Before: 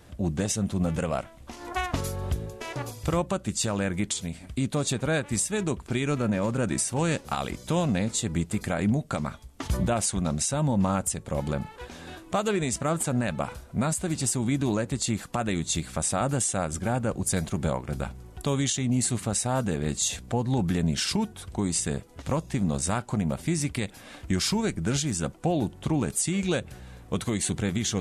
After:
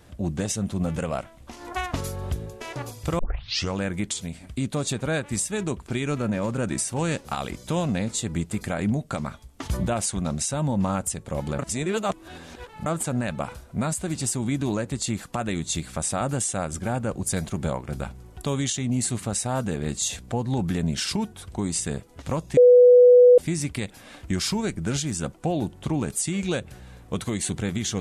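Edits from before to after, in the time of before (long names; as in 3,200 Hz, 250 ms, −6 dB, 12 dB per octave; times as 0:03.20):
0:03.19: tape start 0.58 s
0:11.59–0:12.86: reverse
0:22.57–0:23.38: beep over 493 Hz −9 dBFS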